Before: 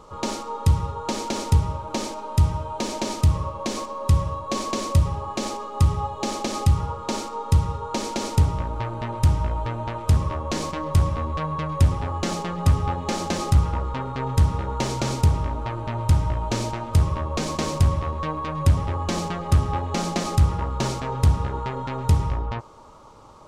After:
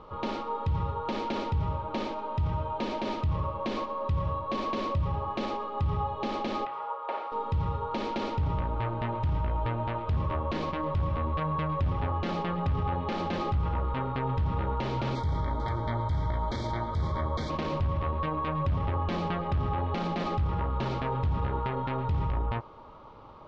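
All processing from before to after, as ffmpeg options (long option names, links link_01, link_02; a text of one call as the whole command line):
ffmpeg -i in.wav -filter_complex "[0:a]asettb=1/sr,asplit=3[link_01][link_02][link_03];[link_01]atrim=end=6.654[link_04];[link_02]atrim=start=6.65:end=7.32,asetpts=PTS-STARTPTS,afade=type=in:duration=0.004:curve=qsin,afade=type=out:start_time=0.666:duration=0.004:curve=qsin,highpass=frequency=590:width=0.5412,highpass=frequency=590:width=1.3066,aemphasis=mode=reproduction:type=riaa,acrossover=split=3000[link_05][link_06];[link_06]acompressor=threshold=-55dB:ratio=4:attack=1:release=60[link_07];[link_05][link_07]amix=inputs=2:normalize=0[link_08];[link_03]atrim=start=7.316[link_09];[link_04][link_08]acrossfade=duration=0.004:curve1=hsin:curve2=qsin[link_10];[link_10][link_09]acrossfade=duration=0.004:curve1=qsin:curve2=hsin,asettb=1/sr,asplit=3[link_11][link_12][link_13];[link_11]atrim=end=15.154[link_14];[link_12]atrim=start=15.15:end=17.5,asetpts=PTS-STARTPTS,afade=type=in:duration=0.004:curve=qsin,afade=type=out:start_time=2.346:duration=0.004:curve=qsin,asuperstop=centerf=2700:order=20:qfactor=3.2,aemphasis=mode=production:type=75fm,aecho=1:1:447:0.251,atrim=end_sample=103635[link_15];[link_13]atrim=start=17.496[link_16];[link_14][link_15]acrossfade=duration=0.004:curve1=hsin:curve2=qsin[link_17];[link_17][link_16]acrossfade=duration=0.004:curve1=qsin:curve2=hsin,alimiter=limit=-20dB:level=0:latency=1:release=23,lowpass=frequency=3600:width=0.5412,lowpass=frequency=3600:width=1.3066,volume=-1.5dB" out.wav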